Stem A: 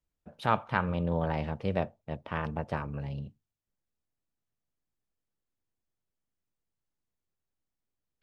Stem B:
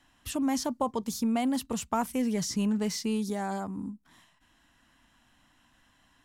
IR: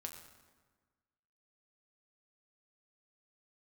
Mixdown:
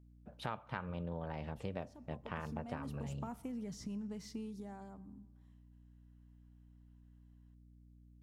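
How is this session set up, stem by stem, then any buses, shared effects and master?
−5.0 dB, 0.00 s, send −19 dB, mains hum 60 Hz, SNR 20 dB
0:02.07 −24 dB → 0:02.85 −13.5 dB → 0:04.35 −13.5 dB → 0:05.10 −24 dB, 1.30 s, send −6.5 dB, spectral tilt −2 dB per octave; downward compressor, threshold −28 dBFS, peak gain reduction 7.5 dB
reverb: on, RT60 1.4 s, pre-delay 6 ms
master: downward compressor 6 to 1, threshold −37 dBFS, peak gain reduction 13 dB

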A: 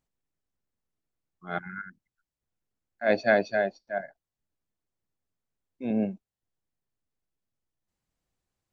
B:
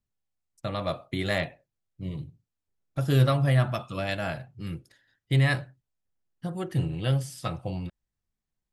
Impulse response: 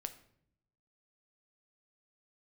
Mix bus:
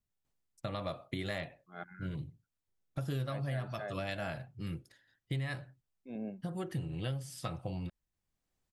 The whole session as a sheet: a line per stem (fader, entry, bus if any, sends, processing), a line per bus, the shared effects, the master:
−1.0 dB, 0.25 s, no send, automatic ducking −12 dB, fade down 0.25 s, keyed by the second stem
−3.0 dB, 0.00 s, no send, no processing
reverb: not used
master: downward compressor 6 to 1, threshold −34 dBFS, peak gain reduction 14.5 dB

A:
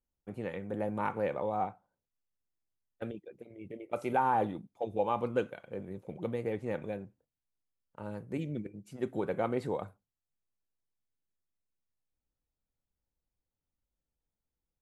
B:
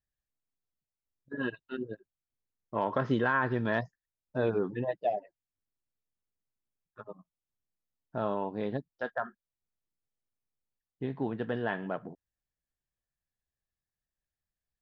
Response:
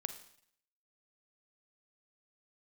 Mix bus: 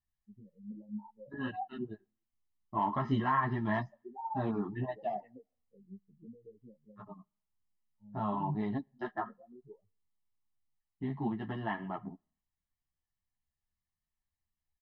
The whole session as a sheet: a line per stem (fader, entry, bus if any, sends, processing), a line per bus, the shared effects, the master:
−2.0 dB, 0.00 s, send −23 dB, gap after every zero crossing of 0.16 ms; downward compressor 16 to 1, threshold −35 dBFS, peak gain reduction 12.5 dB; every bin expanded away from the loudest bin 4 to 1
−0.5 dB, 0.00 s, send −23 dB, high-shelf EQ 2,700 Hz −7.5 dB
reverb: on, RT60 0.65 s, pre-delay 37 ms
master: comb filter 1 ms, depth 94%; string-ensemble chorus

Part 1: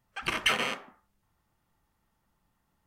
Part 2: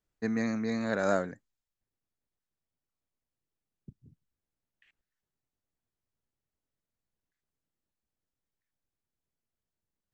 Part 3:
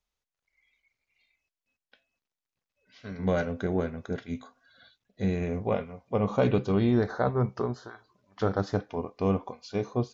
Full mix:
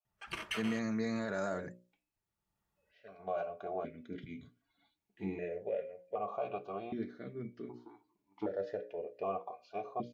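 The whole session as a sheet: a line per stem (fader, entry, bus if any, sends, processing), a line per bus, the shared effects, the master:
−9.0 dB, 0.05 s, no bus, no send, automatic ducking −21 dB, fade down 1.65 s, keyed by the third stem
0.0 dB, 0.35 s, bus A, no send, no processing
+3.0 dB, 0.00 s, bus A, no send, parametric band 590 Hz +3 dB; speech leveller within 4 dB 2 s; formant filter that steps through the vowels 1.3 Hz
bus A: 0.0 dB, mains-hum notches 60/120/180/240/300/360/420/480/540/600 Hz; brickwall limiter −25 dBFS, peak gain reduction 10 dB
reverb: not used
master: notch comb filter 260 Hz

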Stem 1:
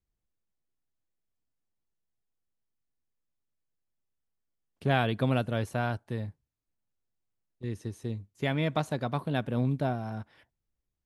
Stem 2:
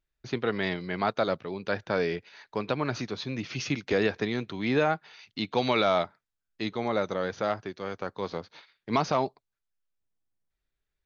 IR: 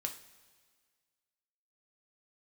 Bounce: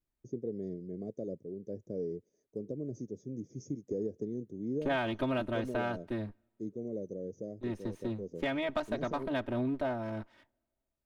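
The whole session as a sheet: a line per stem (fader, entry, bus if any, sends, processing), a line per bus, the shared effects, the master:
+1.0 dB, 0.00 s, send −23.5 dB, lower of the sound and its delayed copy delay 3.2 ms; high-shelf EQ 4,000 Hz −10.5 dB
−4.5 dB, 0.00 s, no send, inverse Chebyshev band-stop filter 830–4,400 Hz, stop band 40 dB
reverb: on, pre-delay 3 ms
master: low-shelf EQ 130 Hz −7 dB; downward compressor 2 to 1, threshold −32 dBFS, peak gain reduction 7 dB

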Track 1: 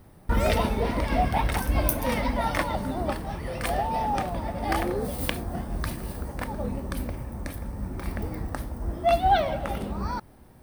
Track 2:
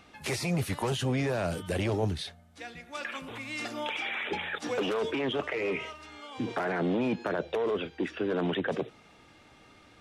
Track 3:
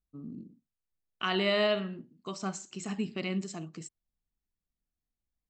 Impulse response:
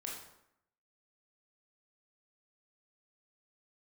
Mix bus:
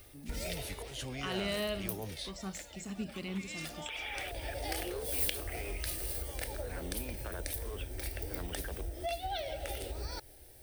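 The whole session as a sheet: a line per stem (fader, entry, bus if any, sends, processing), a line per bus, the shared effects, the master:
−2.5 dB, 0.00 s, bus A, no send, parametric band 220 Hz −8 dB 0.77 octaves; phaser with its sweep stopped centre 450 Hz, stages 4; automatic ducking −20 dB, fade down 1.10 s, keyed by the third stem
−13.0 dB, 0.00 s, bus A, no send, volume swells 196 ms
−14.5 dB, 0.00 s, no bus, no send, low-shelf EQ 490 Hz +10.5 dB
bus A: 0.0 dB, downward compressor 6 to 1, threshold −36 dBFS, peak gain reduction 12.5 dB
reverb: not used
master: high-shelf EQ 2,200 Hz +11.5 dB

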